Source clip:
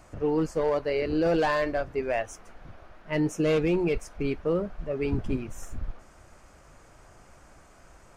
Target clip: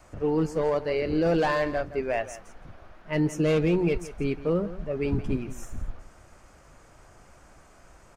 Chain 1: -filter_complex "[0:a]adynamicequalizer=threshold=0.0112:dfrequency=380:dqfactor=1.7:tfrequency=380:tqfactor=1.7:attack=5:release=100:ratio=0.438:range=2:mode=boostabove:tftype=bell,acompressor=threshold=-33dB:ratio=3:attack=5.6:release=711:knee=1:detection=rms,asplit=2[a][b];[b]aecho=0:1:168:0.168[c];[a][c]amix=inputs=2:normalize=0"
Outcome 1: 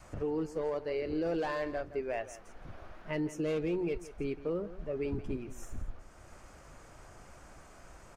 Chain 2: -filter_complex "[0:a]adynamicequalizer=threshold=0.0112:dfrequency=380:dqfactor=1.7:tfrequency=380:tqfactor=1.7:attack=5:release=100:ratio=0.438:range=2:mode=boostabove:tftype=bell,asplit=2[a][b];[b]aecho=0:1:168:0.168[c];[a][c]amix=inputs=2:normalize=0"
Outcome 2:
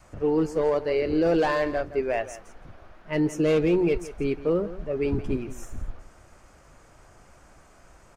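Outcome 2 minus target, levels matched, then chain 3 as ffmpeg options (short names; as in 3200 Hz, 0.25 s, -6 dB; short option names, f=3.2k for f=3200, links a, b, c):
125 Hz band -4.5 dB
-filter_complex "[0:a]adynamicequalizer=threshold=0.0112:dfrequency=170:dqfactor=1.7:tfrequency=170:tqfactor=1.7:attack=5:release=100:ratio=0.438:range=2:mode=boostabove:tftype=bell,asplit=2[a][b];[b]aecho=0:1:168:0.168[c];[a][c]amix=inputs=2:normalize=0"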